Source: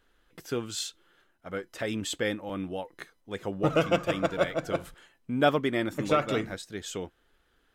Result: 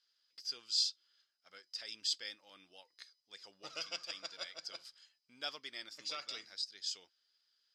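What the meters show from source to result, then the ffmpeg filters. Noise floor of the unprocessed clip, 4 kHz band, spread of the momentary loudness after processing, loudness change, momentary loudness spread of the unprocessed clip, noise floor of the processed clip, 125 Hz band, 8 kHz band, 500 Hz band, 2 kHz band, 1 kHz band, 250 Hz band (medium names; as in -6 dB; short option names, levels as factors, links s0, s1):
-70 dBFS, 0.0 dB, 22 LU, -9.5 dB, 14 LU, -81 dBFS, under -35 dB, -5.5 dB, -28.0 dB, -15.0 dB, -21.5 dB, -33.5 dB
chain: -af "bandpass=f=4900:t=q:w=13:csg=0,volume=5.01"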